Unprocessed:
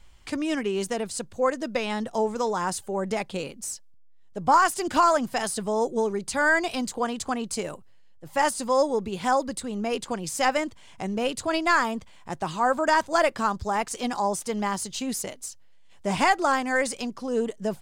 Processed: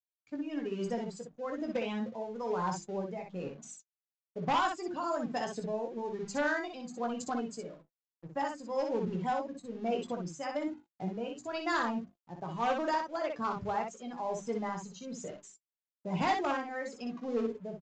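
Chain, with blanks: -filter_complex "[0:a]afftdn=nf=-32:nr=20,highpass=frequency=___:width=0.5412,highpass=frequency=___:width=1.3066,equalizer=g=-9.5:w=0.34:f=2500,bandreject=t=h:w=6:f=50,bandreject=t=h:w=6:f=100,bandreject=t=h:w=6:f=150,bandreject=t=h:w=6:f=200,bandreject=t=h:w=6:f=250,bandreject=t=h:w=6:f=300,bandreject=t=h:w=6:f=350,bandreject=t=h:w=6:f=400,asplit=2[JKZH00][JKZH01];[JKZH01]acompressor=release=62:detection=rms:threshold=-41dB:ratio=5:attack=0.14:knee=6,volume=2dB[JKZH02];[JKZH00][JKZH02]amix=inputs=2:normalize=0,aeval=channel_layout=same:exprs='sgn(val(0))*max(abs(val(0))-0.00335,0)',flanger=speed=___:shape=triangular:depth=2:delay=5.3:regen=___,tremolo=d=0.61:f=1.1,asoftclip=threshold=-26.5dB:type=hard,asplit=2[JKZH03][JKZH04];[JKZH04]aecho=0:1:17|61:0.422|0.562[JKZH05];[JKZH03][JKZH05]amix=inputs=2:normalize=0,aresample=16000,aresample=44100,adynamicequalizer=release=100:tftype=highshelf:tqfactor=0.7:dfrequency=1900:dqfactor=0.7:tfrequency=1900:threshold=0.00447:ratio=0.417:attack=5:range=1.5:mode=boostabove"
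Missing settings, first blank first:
92, 92, 1, 55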